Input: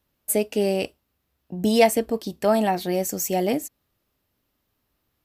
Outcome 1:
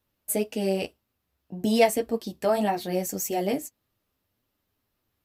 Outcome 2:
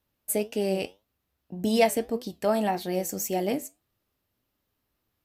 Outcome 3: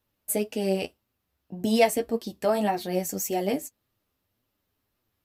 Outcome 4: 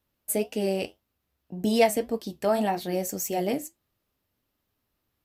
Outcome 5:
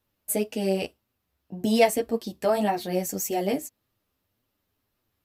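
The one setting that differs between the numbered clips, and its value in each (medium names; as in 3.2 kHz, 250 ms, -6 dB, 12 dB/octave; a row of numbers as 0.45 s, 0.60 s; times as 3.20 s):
flange, regen: -21%, +77%, +26%, -66%, 0%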